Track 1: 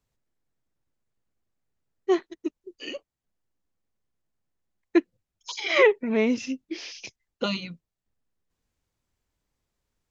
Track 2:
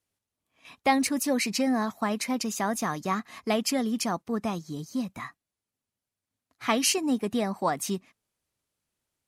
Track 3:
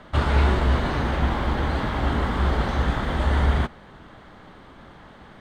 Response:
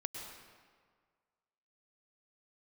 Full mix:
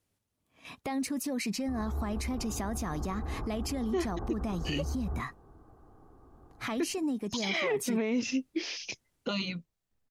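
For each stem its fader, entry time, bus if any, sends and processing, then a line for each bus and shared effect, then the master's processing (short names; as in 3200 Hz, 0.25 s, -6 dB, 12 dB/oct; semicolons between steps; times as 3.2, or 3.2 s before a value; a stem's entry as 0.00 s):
+1.5 dB, 1.85 s, no bus, no send, limiter -15 dBFS, peak gain reduction 8.5 dB
+1.5 dB, 0.00 s, bus A, no send, compressor, threshold -31 dBFS, peak gain reduction 13 dB
-16.0 dB, 1.55 s, bus A, no send, steep low-pass 1300 Hz 36 dB/oct; comb 2.6 ms, depth 54%; limiter -18 dBFS, peak gain reduction 10.5 dB
bus A: 0.0 dB, low shelf 490 Hz +7.5 dB; limiter -26 dBFS, peak gain reduction 10.5 dB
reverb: off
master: limiter -22 dBFS, peak gain reduction 9.5 dB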